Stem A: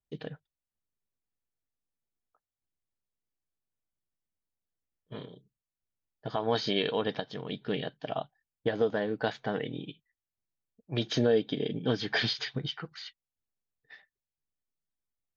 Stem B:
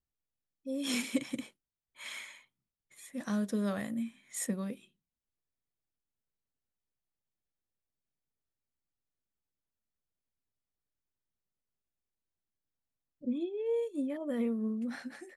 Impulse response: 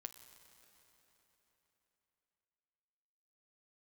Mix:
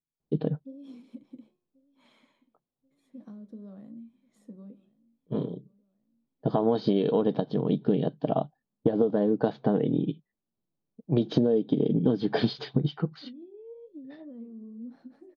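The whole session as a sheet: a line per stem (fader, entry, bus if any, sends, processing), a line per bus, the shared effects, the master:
+1.5 dB, 0.20 s, no send, no echo send, none
-9.0 dB, 0.00 s, no send, echo send -23 dB, de-hum 358 Hz, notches 30; compression 16:1, threshold -40 dBFS, peak gain reduction 16 dB; flange 1 Hz, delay 5.8 ms, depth 8.6 ms, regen +68%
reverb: none
echo: feedback delay 1085 ms, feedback 51%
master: FFT filter 100 Hz 0 dB, 150 Hz +14 dB, 310 Hz +13 dB, 1.1 kHz +2 dB, 1.9 kHz -11 dB, 4.2 kHz -4 dB, 7.1 kHz -17 dB; compression 12:1, threshold -19 dBFS, peak gain reduction 11 dB

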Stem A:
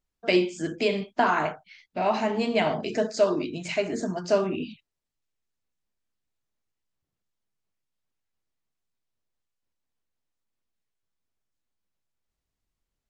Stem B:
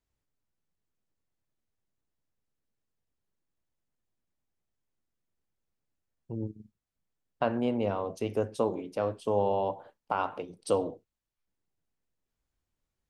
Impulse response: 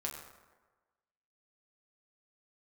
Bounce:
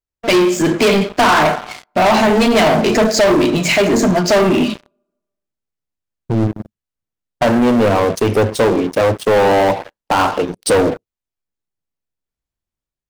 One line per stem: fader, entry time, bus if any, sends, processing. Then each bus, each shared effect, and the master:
-4.0 dB, 0.00 s, send -12.5 dB, none
+0.5 dB, 0.00 s, no send, none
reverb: on, RT60 1.3 s, pre-delay 6 ms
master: level rider gain up to 4.5 dB; waveshaping leveller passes 5

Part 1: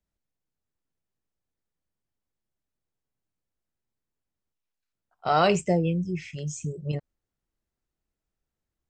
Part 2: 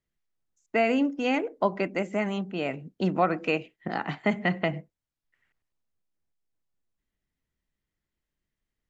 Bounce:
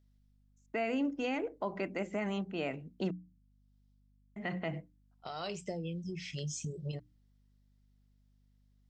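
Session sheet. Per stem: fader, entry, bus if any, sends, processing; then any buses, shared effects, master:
-2.5 dB, 0.00 s, no send, high-order bell 4.2 kHz +8.5 dB 1.1 oct; compression 16:1, threshold -32 dBFS, peak gain reduction 17 dB; auto duck -23 dB, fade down 0.45 s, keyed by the second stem
-5.0 dB, 0.00 s, muted 3.11–4.36 s, no send, none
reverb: none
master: hum notches 60/120/180/240/300 Hz; hum 50 Hz, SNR 31 dB; peak limiter -25 dBFS, peak gain reduction 10 dB

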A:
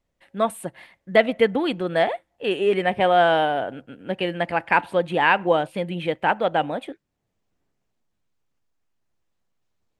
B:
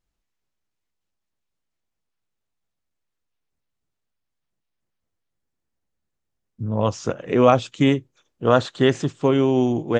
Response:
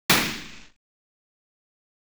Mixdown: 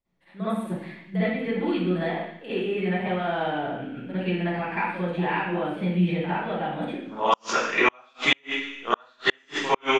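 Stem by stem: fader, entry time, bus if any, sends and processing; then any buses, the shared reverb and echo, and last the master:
-12.0 dB, 0.00 s, send -11 dB, compression 2.5:1, threshold -30 dBFS, peak gain reduction 13 dB
-3.5 dB, 0.40 s, send -7.5 dB, high-pass 1.1 kHz 12 dB/octave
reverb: on, pre-delay 46 ms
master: inverted gate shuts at -7 dBFS, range -41 dB

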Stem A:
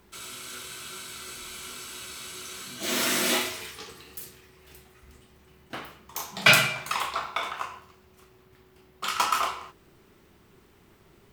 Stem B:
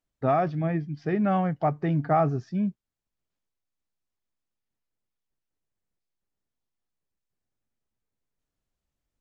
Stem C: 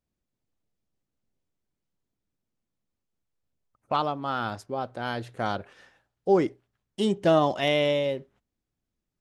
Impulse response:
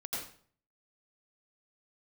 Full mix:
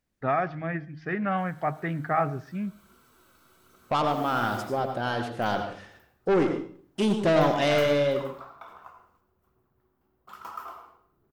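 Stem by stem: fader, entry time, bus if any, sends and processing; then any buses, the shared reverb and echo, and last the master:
-15.5 dB, 1.25 s, send -7.5 dB, high-order bell 4.6 kHz -14 dB 2.8 oct; phaser 1.2 Hz, delay 4.1 ms, feedback 31%
-6.0 dB, 0.00 s, send -23.5 dB, peaking EQ 1.8 kHz +12.5 dB 1.4 oct; de-hum 155.7 Hz, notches 11
+1.5 dB, 0.00 s, send -4.5 dB, hum notches 50/100 Hz; saturation -22 dBFS, distortion -9 dB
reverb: on, RT60 0.50 s, pre-delay 79 ms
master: loudspeaker Doppler distortion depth 0.16 ms

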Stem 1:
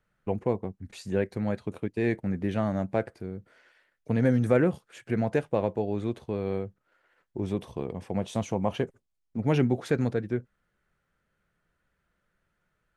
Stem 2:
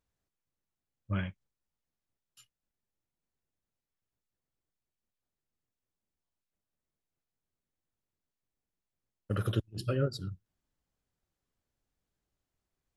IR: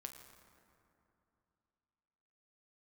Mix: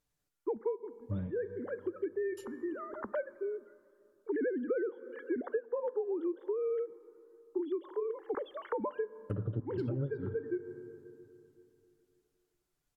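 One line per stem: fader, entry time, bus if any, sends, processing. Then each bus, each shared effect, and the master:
+2.5 dB, 0.20 s, send -9.5 dB, formants replaced by sine waves; gate with hold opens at -51 dBFS; static phaser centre 680 Hz, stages 6; auto duck -18 dB, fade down 0.35 s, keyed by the second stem
-2.5 dB, 0.00 s, send -4.5 dB, low-pass that closes with the level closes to 520 Hz, closed at -29.5 dBFS; treble shelf 5.8 kHz +6.5 dB; comb 6.8 ms, depth 51%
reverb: on, RT60 2.8 s, pre-delay 7 ms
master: compression 8:1, threshold -31 dBFS, peak gain reduction 17 dB

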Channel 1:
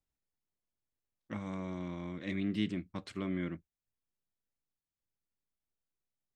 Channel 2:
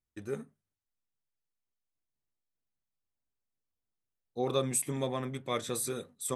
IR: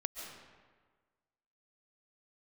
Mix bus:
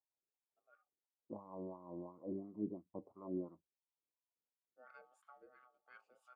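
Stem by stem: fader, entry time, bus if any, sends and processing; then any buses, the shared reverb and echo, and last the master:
+1.5 dB, 0.00 s, no send, elliptic low-pass 1 kHz, stop band 40 dB; bass shelf 100 Hz +6.5 dB
-18.0 dB, 0.40 s, no send, ring modulator 1 kHz; rotary cabinet horn 1 Hz; auto duck -9 dB, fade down 0.85 s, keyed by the first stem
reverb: none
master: wah-wah 2.9 Hz 360–1500 Hz, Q 2.3

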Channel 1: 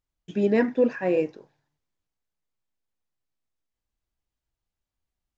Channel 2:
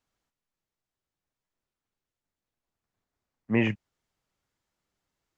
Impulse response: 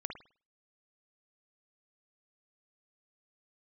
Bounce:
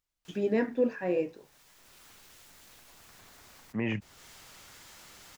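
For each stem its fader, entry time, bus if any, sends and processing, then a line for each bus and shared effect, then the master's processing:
-2.0 dB, 0.00 s, no send, flange 0.48 Hz, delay 8.2 ms, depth 9.5 ms, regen -61%
-6.0 dB, 0.25 s, no send, peak limiter -16 dBFS, peak gain reduction 3.5 dB; level flattener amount 50%; auto duck -8 dB, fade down 0.25 s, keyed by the first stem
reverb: none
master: tape noise reduction on one side only encoder only

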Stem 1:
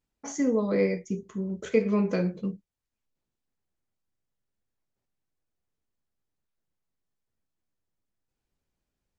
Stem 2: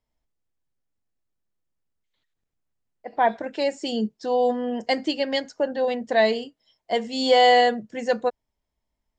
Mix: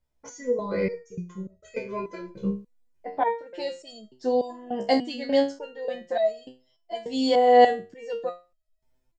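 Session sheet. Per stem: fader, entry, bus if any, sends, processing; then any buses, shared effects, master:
+3.0 dB, 0.00 s, no send, comb 2 ms, depth 70%
+3.0 dB, 0.00 s, no send, peaking EQ 480 Hz +4 dB 2.2 oct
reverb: none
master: bass shelf 160 Hz +8 dB; level rider gain up to 9.5 dB; resonator arpeggio 3.4 Hz 67–640 Hz

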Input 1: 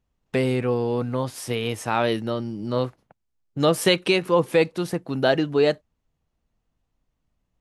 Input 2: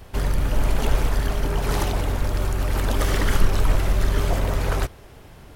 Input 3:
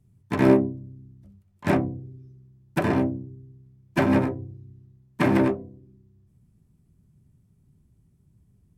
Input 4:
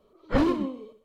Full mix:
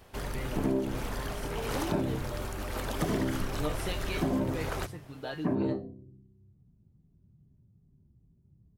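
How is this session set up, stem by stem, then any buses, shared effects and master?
-7.5 dB, 0.00 s, no send, feedback comb 150 Hz, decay 0.22 s, harmonics all, mix 90%
-7.5 dB, 0.00 s, no send, bass shelf 120 Hz -10 dB
-2.5 dB, 0.25 s, no send, drifting ripple filter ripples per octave 1.5, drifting -2.5 Hz, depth 8 dB; Bessel low-pass 610 Hz, order 2
-13.0 dB, 1.40 s, no send, none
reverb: none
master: compression 12:1, threshold -25 dBFS, peak gain reduction 11.5 dB

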